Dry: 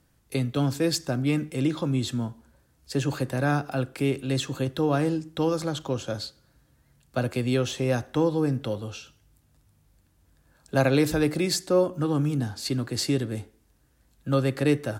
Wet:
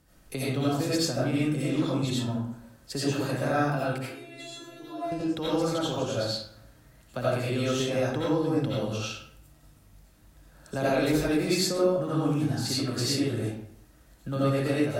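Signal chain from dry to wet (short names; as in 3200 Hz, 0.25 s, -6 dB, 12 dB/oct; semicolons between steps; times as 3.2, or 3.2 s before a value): 3.98–5.12 resonator 340 Hz, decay 0.46 s, harmonics all, mix 100%; compressor 2:1, threshold -37 dBFS, peak gain reduction 11.5 dB; digital reverb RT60 0.64 s, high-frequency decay 0.65×, pre-delay 45 ms, DRR -8.5 dB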